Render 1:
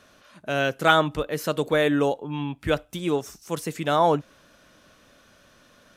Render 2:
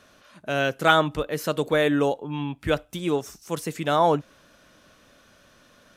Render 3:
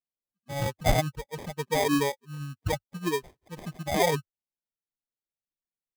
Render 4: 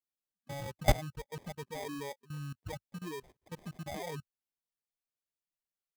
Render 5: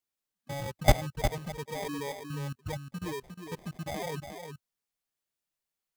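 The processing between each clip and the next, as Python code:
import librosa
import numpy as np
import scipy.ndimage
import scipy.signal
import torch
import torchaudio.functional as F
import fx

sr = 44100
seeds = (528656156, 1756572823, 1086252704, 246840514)

y1 = x
y2 = fx.bin_expand(y1, sr, power=3.0)
y2 = fx.peak_eq(y2, sr, hz=99.0, db=9.5, octaves=0.77)
y2 = fx.sample_hold(y2, sr, seeds[0], rate_hz=1400.0, jitter_pct=0)
y3 = fx.level_steps(y2, sr, step_db=20)
y4 = y3 + 10.0 ** (-7.5 / 20.0) * np.pad(y3, (int(357 * sr / 1000.0), 0))[:len(y3)]
y4 = y4 * librosa.db_to_amplitude(4.5)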